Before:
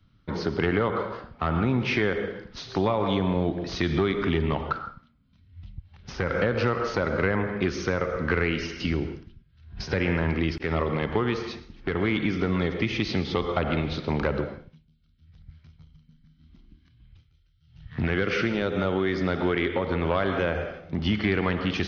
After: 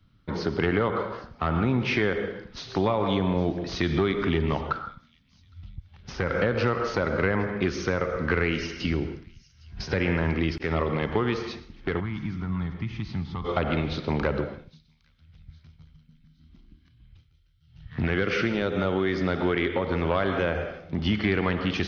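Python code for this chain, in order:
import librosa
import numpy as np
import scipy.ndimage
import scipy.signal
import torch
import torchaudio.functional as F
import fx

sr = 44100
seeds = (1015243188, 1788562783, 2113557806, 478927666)

p1 = fx.curve_eq(x, sr, hz=(160.0, 490.0, 930.0, 2400.0), db=(0, -22, -4, -14), at=(11.99, 13.44), fade=0.02)
y = p1 + fx.echo_wet_highpass(p1, sr, ms=811, feedback_pct=41, hz=5200.0, wet_db=-17, dry=0)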